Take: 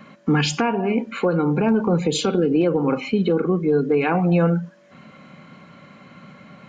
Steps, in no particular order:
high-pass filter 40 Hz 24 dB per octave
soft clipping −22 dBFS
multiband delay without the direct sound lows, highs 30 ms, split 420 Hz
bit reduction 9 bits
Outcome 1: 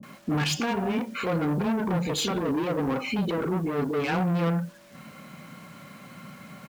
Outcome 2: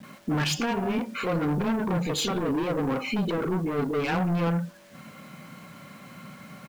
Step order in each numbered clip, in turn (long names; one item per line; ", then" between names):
soft clipping, then high-pass filter, then bit reduction, then multiband delay without the direct sound
high-pass filter, then soft clipping, then multiband delay without the direct sound, then bit reduction